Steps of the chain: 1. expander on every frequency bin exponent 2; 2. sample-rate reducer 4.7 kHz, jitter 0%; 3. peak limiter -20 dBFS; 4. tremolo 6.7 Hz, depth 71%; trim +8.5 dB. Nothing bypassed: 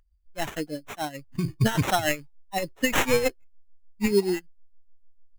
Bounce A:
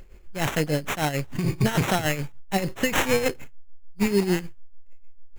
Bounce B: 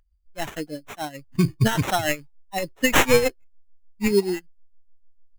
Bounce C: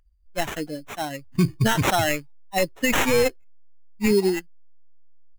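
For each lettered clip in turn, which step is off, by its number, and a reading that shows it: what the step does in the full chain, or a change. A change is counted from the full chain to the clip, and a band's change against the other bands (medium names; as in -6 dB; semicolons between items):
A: 1, momentary loudness spread change -4 LU; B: 3, crest factor change +5.0 dB; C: 4, crest factor change -3.5 dB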